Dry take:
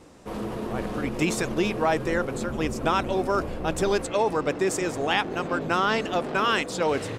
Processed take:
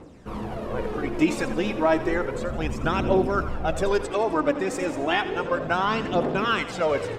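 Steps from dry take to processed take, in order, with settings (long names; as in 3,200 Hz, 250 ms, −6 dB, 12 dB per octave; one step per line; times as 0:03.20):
high-shelf EQ 4,200 Hz −10.5 dB
phase shifter 0.32 Hz, delay 4 ms, feedback 55%
feedback echo with a high-pass in the loop 85 ms, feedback 58%, level −13 dB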